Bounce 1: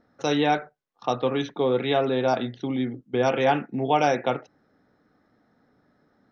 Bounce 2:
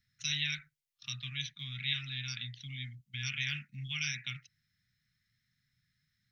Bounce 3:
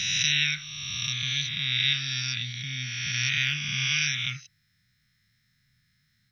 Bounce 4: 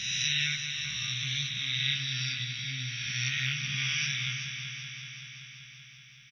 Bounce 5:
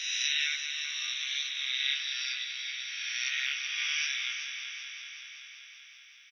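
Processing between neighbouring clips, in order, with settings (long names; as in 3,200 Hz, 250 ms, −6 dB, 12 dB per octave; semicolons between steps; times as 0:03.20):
elliptic band-stop filter 140–2,100 Hz, stop band 60 dB; high-shelf EQ 2,300 Hz +9.5 dB; level −6.5 dB
peak hold with a rise ahead of every peak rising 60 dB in 2.25 s; level +6 dB
double-tracking delay 15 ms −3 dB; echo machine with several playback heads 191 ms, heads first and second, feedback 71%, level −11 dB; level −7 dB
elliptic high-pass filter 760 Hz, stop band 40 dB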